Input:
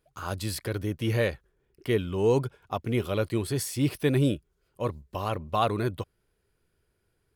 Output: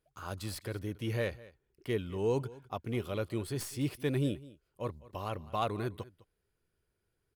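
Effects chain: tracing distortion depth 0.023 ms; delay 206 ms -20 dB; trim -7.5 dB

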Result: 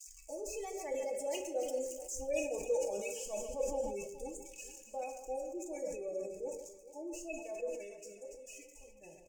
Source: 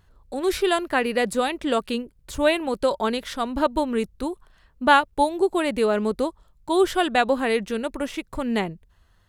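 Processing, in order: zero-crossing glitches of -14 dBFS; Doppler pass-by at 1.93 s, 36 m/s, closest 6.3 m; reverse; compression 16:1, threshold -40 dBFS, peak gain reduction 21 dB; reverse; resonant high shelf 4.4 kHz +8.5 dB, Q 1.5; comb 3.5 ms, depth 52%; spectral gate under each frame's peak -15 dB strong; gate -50 dBFS, range -8 dB; FFT filter 140 Hz 0 dB, 250 Hz -14 dB, 480 Hz +8 dB, 760 Hz 0 dB, 1.4 kHz -29 dB, 2.6 kHz +11 dB, 3.9 kHz -24 dB, 6.9 kHz -5 dB, 11 kHz -25 dB; echo whose repeats swap between lows and highs 142 ms, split 2.1 kHz, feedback 68%, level -8.5 dB; on a send at -3 dB: reverberation RT60 0.60 s, pre-delay 3 ms; on the sum: decay stretcher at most 59 dB/s; trim +2.5 dB

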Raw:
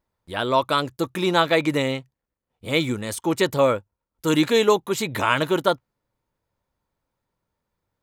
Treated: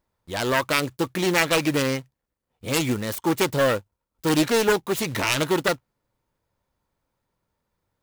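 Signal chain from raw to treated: self-modulated delay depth 0.49 ms; in parallel at +0.5 dB: peak limiter -16 dBFS, peak gain reduction 11.5 dB; on the sum: short-mantissa float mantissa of 2-bit; trim -4.5 dB

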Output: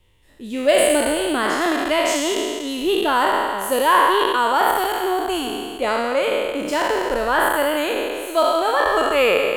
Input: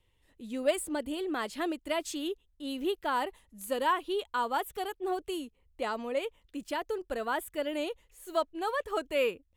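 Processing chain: spectral sustain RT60 2.14 s; trim +9 dB

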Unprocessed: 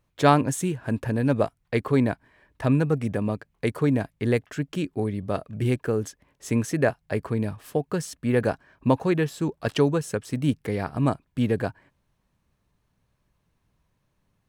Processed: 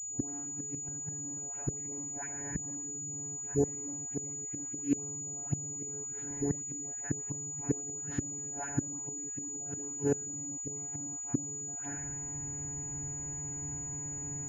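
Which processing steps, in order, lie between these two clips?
spectrogram pixelated in time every 100 ms; recorder AGC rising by 57 dB/s; static phaser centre 800 Hz, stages 8; feedback echo behind a high-pass 147 ms, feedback 34%, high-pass 1.5 kHz, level -6.5 dB; robot voice 142 Hz; tilt EQ -4.5 dB/octave; one-sided clip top -12.5 dBFS; phase dispersion highs, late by 126 ms, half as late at 990 Hz; inverted gate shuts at -15 dBFS, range -28 dB; high-pass 82 Hz 12 dB/octave; class-D stage that switches slowly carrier 6.9 kHz; trim -1.5 dB

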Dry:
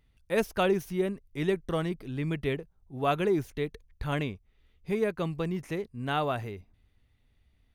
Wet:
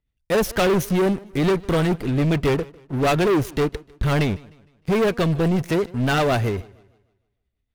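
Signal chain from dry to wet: rotary cabinet horn 8 Hz; waveshaping leveller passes 5; modulated delay 153 ms, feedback 40%, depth 91 cents, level -23 dB

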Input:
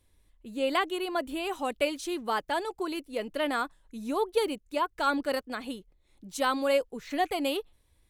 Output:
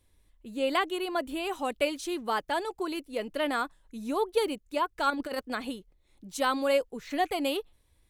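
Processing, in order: 5.10–5.70 s: compressor with a negative ratio -31 dBFS, ratio -0.5

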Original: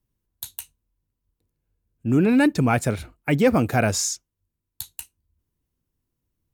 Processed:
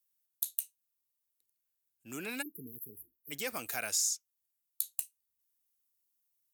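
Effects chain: differentiator; compression 2:1, threshold -37 dBFS, peak gain reduction 8.5 dB; spectral selection erased 2.42–3.31 s, 460–11000 Hz; trim +3 dB

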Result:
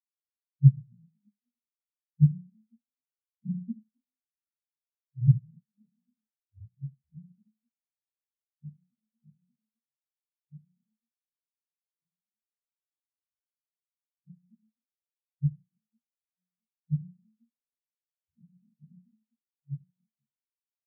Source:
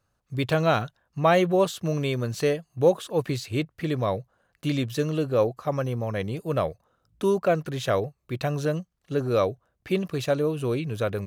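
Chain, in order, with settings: companding laws mixed up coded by mu; compression 5:1, threshold -28 dBFS, peak gain reduction 13 dB; inverted gate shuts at -25 dBFS, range -37 dB; peaking EQ 76 Hz +12 dB 2.6 oct; gate -54 dBFS, range -22 dB; hum notches 60/120/180/240/300/360 Hz; tempo 0.54×; peaking EQ 180 Hz +14.5 dB 0.21 oct; comb of notches 720 Hz; frequency-shifting echo 257 ms, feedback 41%, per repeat +38 Hz, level -6 dB; reverberation RT60 0.50 s, pre-delay 46 ms; spectral contrast expander 4:1; trim +5 dB

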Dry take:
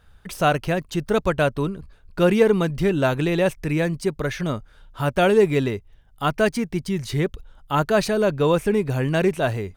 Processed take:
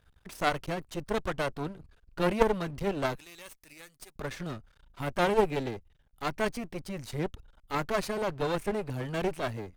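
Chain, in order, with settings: 3.15–4.16 s: pre-emphasis filter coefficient 0.97; half-wave rectifier; Chebyshev shaper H 3 -13 dB, 5 -29 dB, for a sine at -6 dBFS

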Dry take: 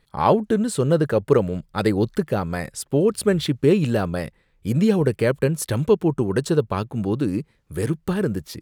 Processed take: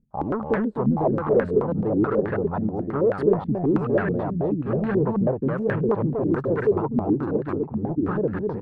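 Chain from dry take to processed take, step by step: delay 766 ms -6 dB; saturation -18.5 dBFS, distortion -10 dB; on a send: delay 257 ms -3.5 dB; on the sum: step-sequenced low-pass 9.3 Hz 230–1700 Hz; trim -4 dB

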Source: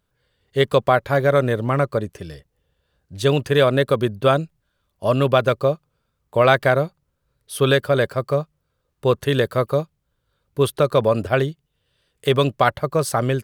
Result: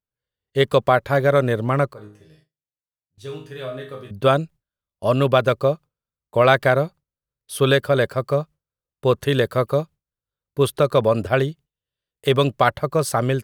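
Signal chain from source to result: 1.93–4.11 s: chord resonator G#2 major, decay 0.48 s; gate with hold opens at -44 dBFS

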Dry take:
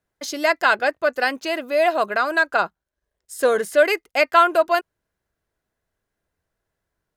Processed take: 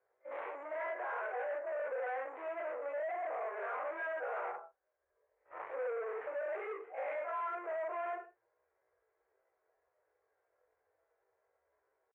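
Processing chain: phase randomisation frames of 100 ms; tempo 0.59×; careless resampling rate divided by 6×, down none, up zero stuff; tilt EQ -5.5 dB/octave; reverse; compression, threshold -22 dBFS, peak gain reduction 13.5 dB; reverse; peak limiter -26 dBFS, peak gain reduction 12 dB; gated-style reverb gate 160 ms falling, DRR 8 dB; saturation -37 dBFS, distortion -9 dB; elliptic band-pass 470–2200 Hz, stop band 40 dB; trim +2.5 dB

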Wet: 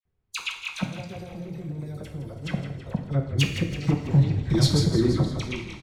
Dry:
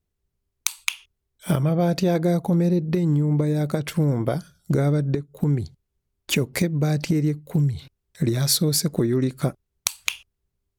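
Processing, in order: chunks repeated in reverse 534 ms, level -10 dB; Doppler pass-by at 3.42 s, 14 m/s, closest 15 m; level-controlled noise filter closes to 2.4 kHz, open at -21 dBFS; hum notches 60/120/180/240/300/360/420/480/540 Hz; in parallel at 0 dB: compression 20:1, threshold -32 dBFS, peak gain reduction 15.5 dB; on the sum: time stretch by phase-locked vocoder 0.54×; inverted gate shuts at -20 dBFS, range -25 dB; wavefolder -23.5 dBFS; phase dispersion lows, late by 53 ms, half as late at 1.8 kHz; on a send: frequency-shifting echo 164 ms, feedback 59%, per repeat -42 Hz, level -10.5 dB; on the sum: two-slope reverb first 0.64 s, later 2.2 s, DRR 3.5 dB; trim +8.5 dB

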